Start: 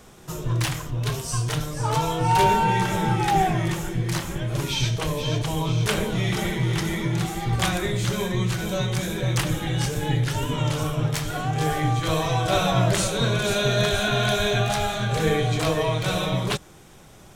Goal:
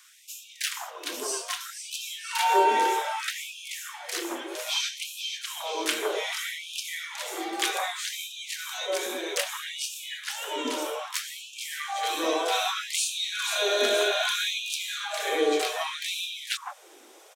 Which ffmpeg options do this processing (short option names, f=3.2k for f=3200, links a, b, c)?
-filter_complex "[0:a]acrossover=split=1300[a][b];[a]adelay=160[c];[c][b]amix=inputs=2:normalize=0,afftfilt=real='re*gte(b*sr/1024,250*pow(2400/250,0.5+0.5*sin(2*PI*0.63*pts/sr)))':imag='im*gte(b*sr/1024,250*pow(2400/250,0.5+0.5*sin(2*PI*0.63*pts/sr)))':win_size=1024:overlap=0.75"